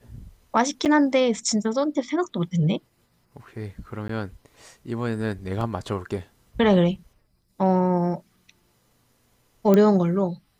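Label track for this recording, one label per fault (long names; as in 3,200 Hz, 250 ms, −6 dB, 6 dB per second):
0.850000	0.860000	drop-out 7.7 ms
4.080000	4.090000	drop-out 13 ms
5.610000	5.610000	drop-out 2 ms
9.740000	9.740000	click −8 dBFS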